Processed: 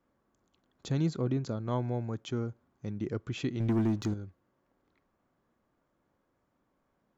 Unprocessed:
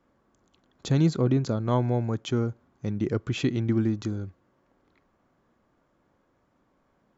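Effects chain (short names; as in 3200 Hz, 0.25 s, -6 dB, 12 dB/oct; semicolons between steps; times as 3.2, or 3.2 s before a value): 3.6–4.14 sample leveller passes 2; gain -7.5 dB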